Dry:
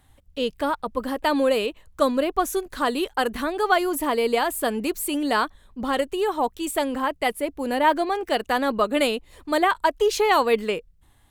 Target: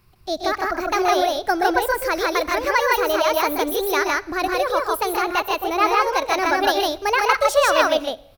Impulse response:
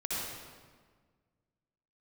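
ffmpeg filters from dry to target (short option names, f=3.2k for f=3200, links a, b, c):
-filter_complex "[0:a]aecho=1:1:172|212.8:0.447|0.891,asplit=2[a][b];[1:a]atrim=start_sample=2205,afade=t=out:st=0.41:d=0.01,atrim=end_sample=18522[c];[b][c]afir=irnorm=-1:irlink=0,volume=-25dB[d];[a][d]amix=inputs=2:normalize=0,asetrate=59535,aresample=44100"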